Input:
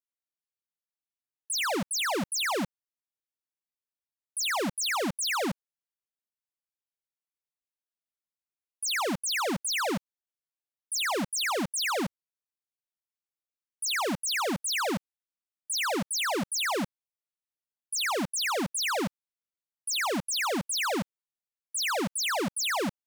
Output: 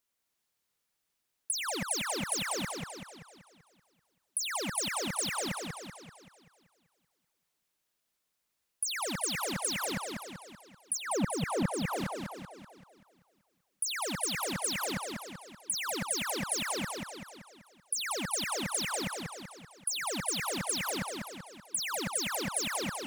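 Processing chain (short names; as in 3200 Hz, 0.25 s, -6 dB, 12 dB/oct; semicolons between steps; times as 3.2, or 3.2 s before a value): negative-ratio compressor -35 dBFS, ratio -0.5; 10.97–11.96 tilt shelf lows +9 dB, about 1300 Hz; warbling echo 0.192 s, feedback 52%, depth 196 cents, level -4 dB; gain +3 dB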